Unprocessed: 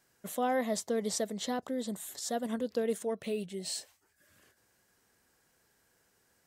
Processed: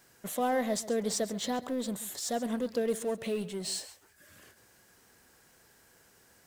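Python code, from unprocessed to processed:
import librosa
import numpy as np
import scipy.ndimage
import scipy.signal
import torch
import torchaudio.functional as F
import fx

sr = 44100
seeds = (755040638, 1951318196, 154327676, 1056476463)

p1 = fx.law_mismatch(x, sr, coded='mu')
y = p1 + fx.echo_single(p1, sr, ms=135, db=-16.0, dry=0)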